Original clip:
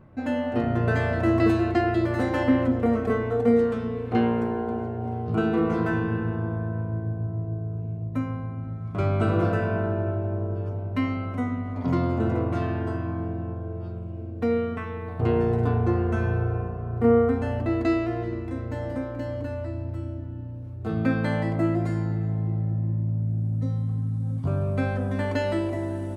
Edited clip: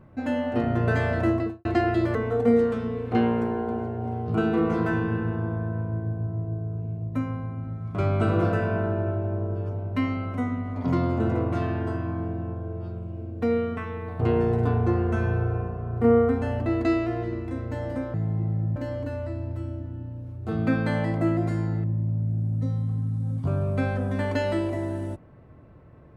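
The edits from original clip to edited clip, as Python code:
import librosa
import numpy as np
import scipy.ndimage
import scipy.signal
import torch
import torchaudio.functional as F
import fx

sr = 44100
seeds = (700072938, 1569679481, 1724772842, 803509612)

y = fx.studio_fade_out(x, sr, start_s=1.19, length_s=0.46)
y = fx.edit(y, sr, fx.cut(start_s=2.15, length_s=1.0),
    fx.move(start_s=22.22, length_s=0.62, to_s=19.14), tone=tone)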